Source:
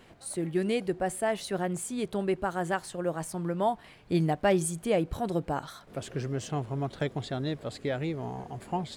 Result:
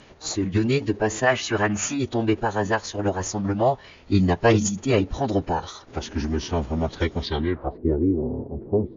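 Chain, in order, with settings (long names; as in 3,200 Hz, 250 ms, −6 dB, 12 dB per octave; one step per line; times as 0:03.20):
gain on a spectral selection 0:01.27–0:01.98, 1,000–3,100 Hz +9 dB
downsampling to 22,050 Hz
phase-vocoder pitch shift with formants kept −9.5 semitones
low-pass filter sweep 7,400 Hz → 380 Hz, 0:07.18–0:07.86
level +7.5 dB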